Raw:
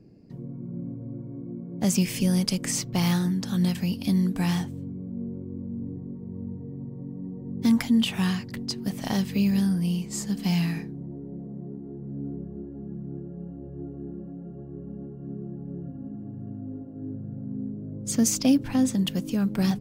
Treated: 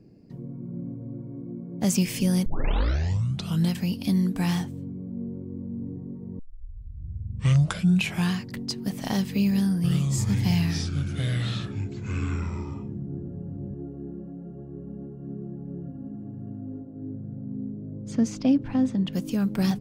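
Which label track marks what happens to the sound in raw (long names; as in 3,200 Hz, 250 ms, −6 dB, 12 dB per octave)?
2.460000	2.460000	tape start 1.24 s
6.390000	6.390000	tape start 1.94 s
9.500000	13.740000	delay with pitch and tempo change per echo 337 ms, each echo −6 semitones, echoes 2
16.810000	19.130000	head-to-tape spacing loss at 10 kHz 24 dB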